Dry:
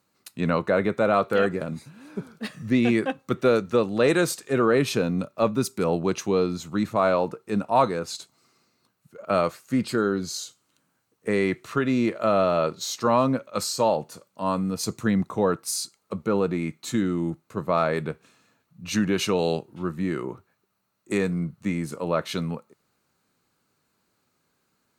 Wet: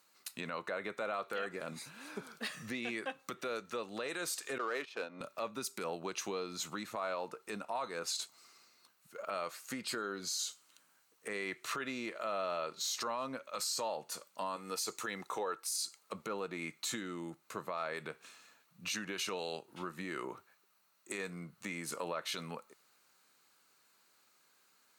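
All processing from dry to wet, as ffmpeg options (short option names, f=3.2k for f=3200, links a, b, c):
-filter_complex "[0:a]asettb=1/sr,asplit=3[a][b][c];[a]atrim=end=4.584[d];[b]atrim=start=4.58:end=5.21,asetpts=PTS-STARTPTS,afade=t=in:d=0.004:c=qsin,afade=t=out:st=0.626:d=0.004:c=qsin,agate=range=-16dB:threshold=-25dB:ratio=16:release=100:detection=peak,highpass=370,adynamicsmooth=sensitivity=5:basefreq=2.8k[e];[c]atrim=start=5.206[f];[d][e]acrossfade=d=0.004:c1=hsin:c2=qsin[g];[g][f]acrossfade=d=0.004:c1=qsin:c2=hsin,asettb=1/sr,asplit=3[h][i][j];[h]atrim=end=14.564[k];[i]atrim=start=14.56:end=15.64,asetpts=PTS-STARTPTS,afade=t=in:d=0.004:c=qsin,afade=t=out:st=1.076:d=0.004:c=qsin,highpass=f=340:p=1,aecho=1:1:2.3:0.33,atrim=end_sample=47628[l];[j]atrim=start=15.636[m];[k][l]acrossfade=d=0.004:c1=hsin:c2=qsin[n];[n][m]acrossfade=d=0.004:c1=qsin:c2=hsin,acompressor=threshold=-30dB:ratio=10,highpass=f=1.3k:p=1,alimiter=level_in=8.5dB:limit=-24dB:level=0:latency=1:release=32,volume=-8.5dB,volume=5dB"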